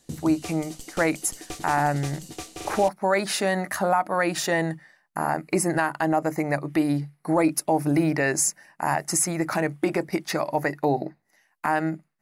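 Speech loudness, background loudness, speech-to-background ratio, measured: -25.0 LUFS, -38.0 LUFS, 13.0 dB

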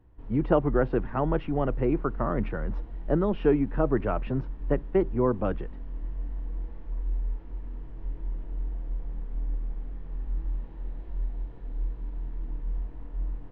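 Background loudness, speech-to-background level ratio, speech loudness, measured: -37.5 LUFS, 10.0 dB, -27.5 LUFS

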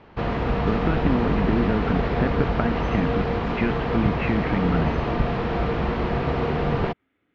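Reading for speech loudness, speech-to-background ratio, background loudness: -27.0 LUFS, -2.0 dB, -25.0 LUFS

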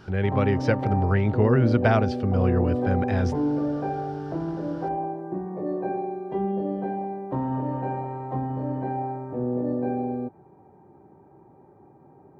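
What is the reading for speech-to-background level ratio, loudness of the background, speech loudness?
5.0 dB, -29.0 LUFS, -24.0 LUFS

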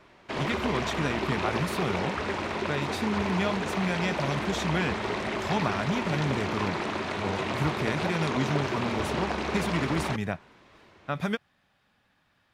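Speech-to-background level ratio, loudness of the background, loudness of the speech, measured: -0.5 dB, -31.0 LUFS, -31.5 LUFS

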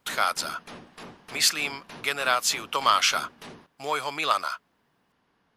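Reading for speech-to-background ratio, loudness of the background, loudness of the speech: 20.0 dB, -45.0 LUFS, -25.0 LUFS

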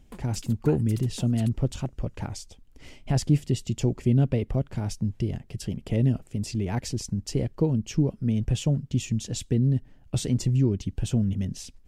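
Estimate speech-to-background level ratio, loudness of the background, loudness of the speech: 19.0 dB, -46.0 LUFS, -27.0 LUFS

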